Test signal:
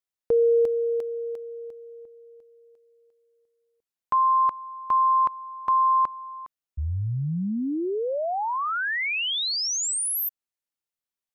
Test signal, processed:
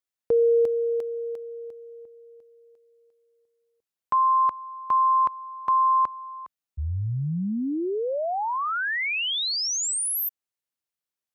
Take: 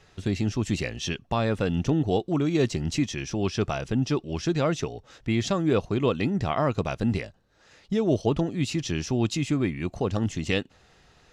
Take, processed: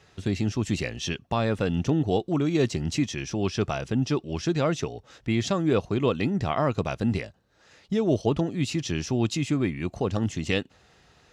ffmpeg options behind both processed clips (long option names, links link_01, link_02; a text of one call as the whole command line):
ffmpeg -i in.wav -af "highpass=50" out.wav